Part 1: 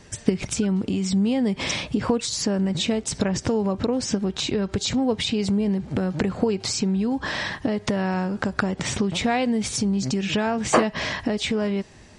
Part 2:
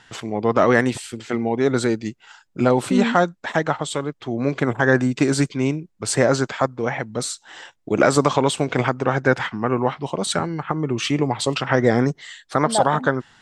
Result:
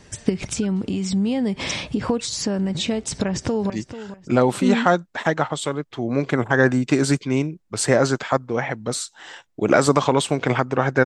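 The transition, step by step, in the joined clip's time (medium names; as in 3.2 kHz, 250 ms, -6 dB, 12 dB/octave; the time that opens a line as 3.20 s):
part 1
3.17–3.70 s: echo throw 440 ms, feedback 25%, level -12.5 dB
3.70 s: go over to part 2 from 1.99 s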